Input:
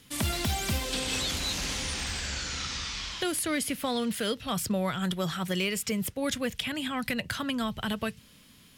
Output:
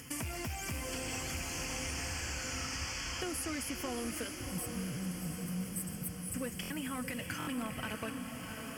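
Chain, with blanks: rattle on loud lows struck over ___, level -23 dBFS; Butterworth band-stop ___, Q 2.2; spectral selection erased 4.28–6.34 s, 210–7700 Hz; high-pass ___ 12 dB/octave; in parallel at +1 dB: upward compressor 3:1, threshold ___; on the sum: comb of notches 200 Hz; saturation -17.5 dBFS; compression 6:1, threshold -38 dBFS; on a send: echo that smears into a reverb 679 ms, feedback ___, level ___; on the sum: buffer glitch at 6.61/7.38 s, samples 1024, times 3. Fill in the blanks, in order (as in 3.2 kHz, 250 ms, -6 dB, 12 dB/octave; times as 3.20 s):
-32 dBFS, 3.8 kHz, 46 Hz, -50 dBFS, 69%, -6 dB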